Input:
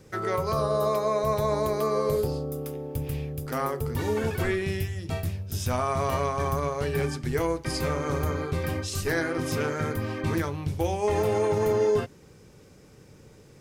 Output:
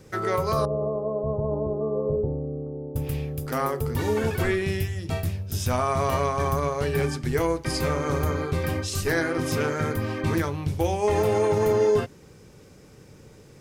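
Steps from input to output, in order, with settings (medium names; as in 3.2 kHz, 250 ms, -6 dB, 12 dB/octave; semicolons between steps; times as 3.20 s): 0.65–2.96 s: Gaussian low-pass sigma 12 samples; trim +2.5 dB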